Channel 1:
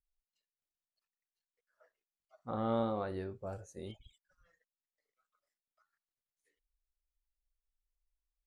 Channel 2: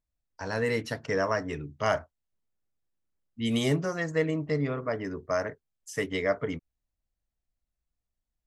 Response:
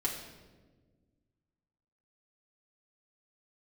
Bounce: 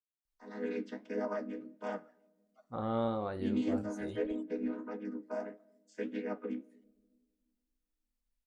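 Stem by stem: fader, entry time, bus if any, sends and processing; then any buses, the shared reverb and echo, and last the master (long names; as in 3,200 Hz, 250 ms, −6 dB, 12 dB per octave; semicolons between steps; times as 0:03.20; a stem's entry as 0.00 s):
0.0 dB, 0.25 s, no send, no processing
−14.5 dB, 0.00 s, send −22.5 dB, channel vocoder with a chord as carrier minor triad, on G#3; automatic gain control gain up to 10.5 dB; flanger 1.6 Hz, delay 7.7 ms, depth 8.8 ms, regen +52%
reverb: on, RT60 1.4 s, pre-delay 4 ms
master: no processing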